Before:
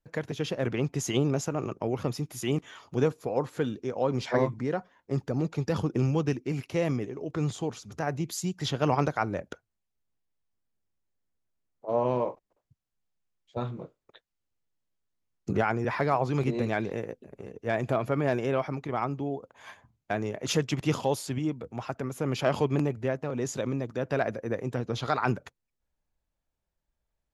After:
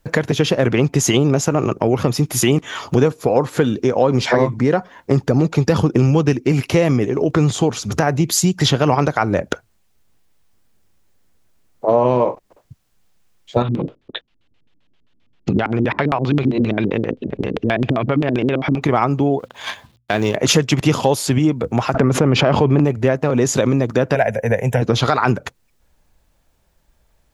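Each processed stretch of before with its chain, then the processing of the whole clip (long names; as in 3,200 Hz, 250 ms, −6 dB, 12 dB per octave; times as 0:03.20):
0:13.62–0:18.82: downward compressor 2 to 1, threshold −40 dBFS + auto-filter low-pass square 7.6 Hz 280–3,200 Hz
0:19.39–0:20.35: mu-law and A-law mismatch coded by A + parametric band 3,600 Hz +9.5 dB 0.93 octaves + mains-hum notches 60/120/180/240 Hz
0:21.94–0:22.85: head-to-tape spacing loss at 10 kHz 22 dB + envelope flattener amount 70%
0:24.15–0:24.82: high-shelf EQ 5,200 Hz +7.5 dB + phaser with its sweep stopped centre 1,200 Hz, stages 6
whole clip: downward compressor 3 to 1, threshold −37 dBFS; boost into a limiter +23.5 dB; level −1 dB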